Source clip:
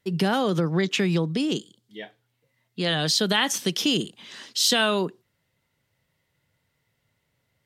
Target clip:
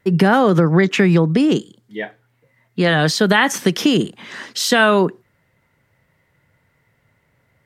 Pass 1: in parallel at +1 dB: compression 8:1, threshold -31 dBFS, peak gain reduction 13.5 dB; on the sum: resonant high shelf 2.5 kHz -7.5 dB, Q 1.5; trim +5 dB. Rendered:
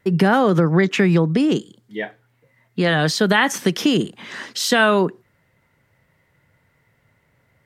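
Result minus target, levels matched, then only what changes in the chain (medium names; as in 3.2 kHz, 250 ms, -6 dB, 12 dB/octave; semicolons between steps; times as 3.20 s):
compression: peak gain reduction +7 dB
change: compression 8:1, threshold -23 dBFS, peak gain reduction 6.5 dB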